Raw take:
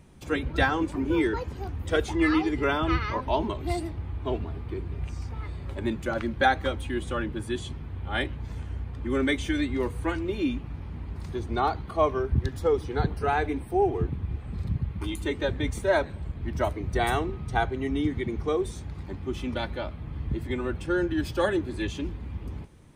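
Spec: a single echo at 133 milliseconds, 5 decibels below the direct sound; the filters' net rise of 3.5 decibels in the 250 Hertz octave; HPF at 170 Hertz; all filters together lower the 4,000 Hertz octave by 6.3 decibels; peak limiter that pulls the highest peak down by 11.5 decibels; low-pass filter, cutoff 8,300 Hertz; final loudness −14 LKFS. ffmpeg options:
ffmpeg -i in.wav -af "highpass=170,lowpass=8300,equalizer=frequency=250:width_type=o:gain=5.5,equalizer=frequency=4000:width_type=o:gain=-8,alimiter=limit=-21dB:level=0:latency=1,aecho=1:1:133:0.562,volume=16dB" out.wav

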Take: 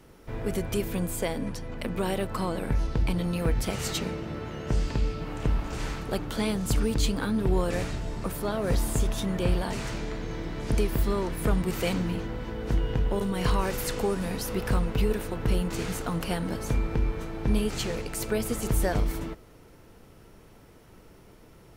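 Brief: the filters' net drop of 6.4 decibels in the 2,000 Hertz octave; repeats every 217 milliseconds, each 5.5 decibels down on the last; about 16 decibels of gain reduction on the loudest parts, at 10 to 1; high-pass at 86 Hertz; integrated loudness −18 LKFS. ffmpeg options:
ffmpeg -i in.wav -af "highpass=86,equalizer=frequency=2000:width_type=o:gain=-8.5,acompressor=threshold=-40dB:ratio=10,aecho=1:1:217|434|651|868|1085|1302|1519:0.531|0.281|0.149|0.079|0.0419|0.0222|0.0118,volume=25dB" out.wav

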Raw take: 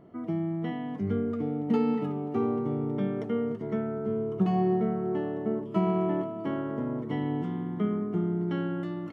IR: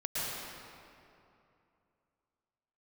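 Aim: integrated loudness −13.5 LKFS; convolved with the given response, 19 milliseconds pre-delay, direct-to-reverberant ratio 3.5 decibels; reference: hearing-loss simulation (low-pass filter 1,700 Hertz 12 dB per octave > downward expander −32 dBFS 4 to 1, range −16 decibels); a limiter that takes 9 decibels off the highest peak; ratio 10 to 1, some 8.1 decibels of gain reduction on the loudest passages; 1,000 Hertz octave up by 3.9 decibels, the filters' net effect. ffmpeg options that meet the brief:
-filter_complex "[0:a]equalizer=frequency=1000:width_type=o:gain=6,acompressor=threshold=-28dB:ratio=10,alimiter=level_in=3dB:limit=-24dB:level=0:latency=1,volume=-3dB,asplit=2[link_01][link_02];[1:a]atrim=start_sample=2205,adelay=19[link_03];[link_02][link_03]afir=irnorm=-1:irlink=0,volume=-10dB[link_04];[link_01][link_04]amix=inputs=2:normalize=0,lowpass=1700,agate=range=-16dB:threshold=-32dB:ratio=4,volume=21.5dB"

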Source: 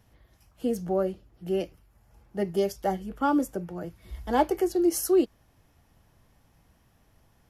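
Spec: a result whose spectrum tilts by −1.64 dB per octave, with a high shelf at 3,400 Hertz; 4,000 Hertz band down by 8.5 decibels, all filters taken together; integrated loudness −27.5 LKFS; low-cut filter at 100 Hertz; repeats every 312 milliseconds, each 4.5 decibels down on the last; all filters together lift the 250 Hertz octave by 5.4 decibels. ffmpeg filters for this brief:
ffmpeg -i in.wav -af "highpass=100,equalizer=frequency=250:width_type=o:gain=8,highshelf=frequency=3400:gain=-8.5,equalizer=frequency=4000:width_type=o:gain=-6,aecho=1:1:312|624|936|1248|1560|1872|2184|2496|2808:0.596|0.357|0.214|0.129|0.0772|0.0463|0.0278|0.0167|0.01,volume=-4dB" out.wav

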